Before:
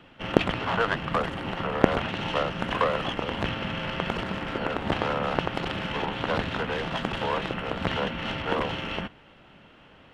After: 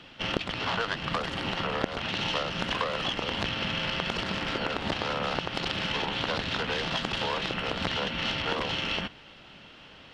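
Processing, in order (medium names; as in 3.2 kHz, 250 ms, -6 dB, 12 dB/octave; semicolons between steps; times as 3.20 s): peaking EQ 4.8 kHz +13.5 dB 1.5 oct; compression 6:1, threshold -26 dBFS, peak gain reduction 15 dB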